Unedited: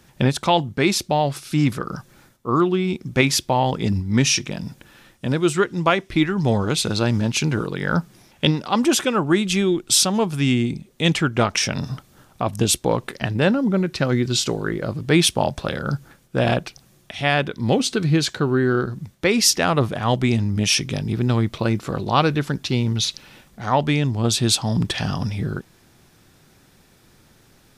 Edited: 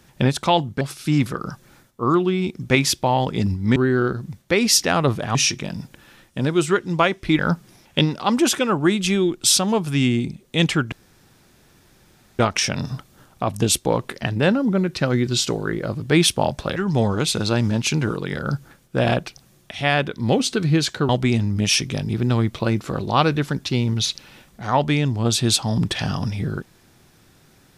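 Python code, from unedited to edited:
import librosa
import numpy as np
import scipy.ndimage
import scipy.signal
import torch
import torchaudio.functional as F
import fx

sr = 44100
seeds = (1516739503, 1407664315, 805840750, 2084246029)

y = fx.edit(x, sr, fx.cut(start_s=0.81, length_s=0.46),
    fx.move(start_s=6.26, length_s=1.59, to_s=15.75),
    fx.insert_room_tone(at_s=11.38, length_s=1.47),
    fx.move(start_s=18.49, length_s=1.59, to_s=4.22), tone=tone)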